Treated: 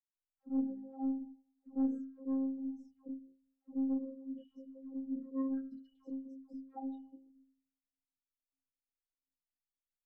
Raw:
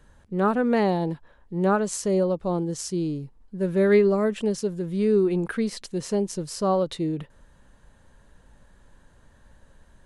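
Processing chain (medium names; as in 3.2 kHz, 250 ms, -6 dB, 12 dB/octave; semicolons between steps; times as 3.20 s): spectral contrast enhancement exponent 3.1; gate -45 dBFS, range -15 dB; pitch-class resonator F#, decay 0.57 s; de-hum 57.84 Hz, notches 3; touch-sensitive flanger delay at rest 6.2 ms, full sweep at -31.5 dBFS; phase dispersion lows, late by 150 ms, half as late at 880 Hz; saturation -24 dBFS, distortion -21 dB; robot voice 267 Hz; trim +4.5 dB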